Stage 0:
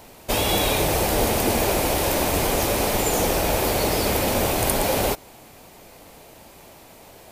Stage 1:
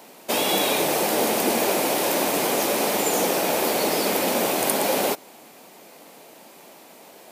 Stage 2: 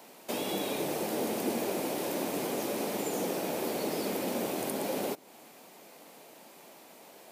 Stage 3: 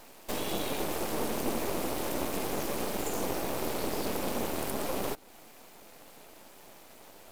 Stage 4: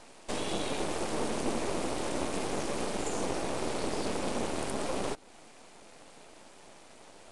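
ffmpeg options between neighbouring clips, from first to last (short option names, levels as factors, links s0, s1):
-af "highpass=f=190:w=0.5412,highpass=f=190:w=1.3066"
-filter_complex "[0:a]acrossover=split=460[s0][s1];[s1]acompressor=threshold=0.0158:ratio=2[s2];[s0][s2]amix=inputs=2:normalize=0,volume=0.501"
-af "aeval=exprs='max(val(0),0)':c=same,volume=1.58"
-af "aresample=22050,aresample=44100"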